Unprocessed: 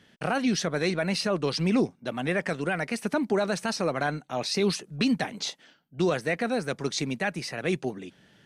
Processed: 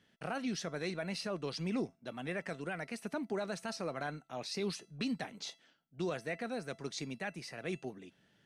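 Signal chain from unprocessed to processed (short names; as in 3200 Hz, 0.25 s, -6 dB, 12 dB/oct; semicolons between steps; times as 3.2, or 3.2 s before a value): resonator 670 Hz, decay 0.32 s, mix 60%; gain -4 dB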